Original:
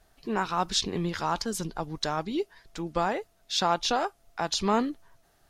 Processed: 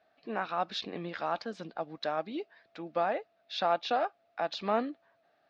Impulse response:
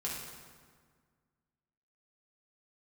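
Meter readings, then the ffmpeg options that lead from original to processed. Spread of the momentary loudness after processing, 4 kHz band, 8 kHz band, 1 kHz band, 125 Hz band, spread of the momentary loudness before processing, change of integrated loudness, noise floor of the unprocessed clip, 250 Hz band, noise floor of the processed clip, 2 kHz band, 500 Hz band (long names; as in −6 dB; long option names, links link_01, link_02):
10 LU, −9.0 dB, below −20 dB, −3.5 dB, −12.0 dB, 9 LU, −4.5 dB, −65 dBFS, −8.0 dB, −71 dBFS, −4.0 dB, −1.5 dB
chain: -af "highpass=340,equalizer=frequency=390:width_type=q:width=4:gain=-9,equalizer=frequency=640:width_type=q:width=4:gain=4,equalizer=frequency=970:width_type=q:width=4:gain=-10,equalizer=frequency=1400:width_type=q:width=4:gain=-3,equalizer=frequency=2000:width_type=q:width=4:gain=-4,equalizer=frequency=3100:width_type=q:width=4:gain=-7,lowpass=frequency=3400:width=0.5412,lowpass=frequency=3400:width=1.3066"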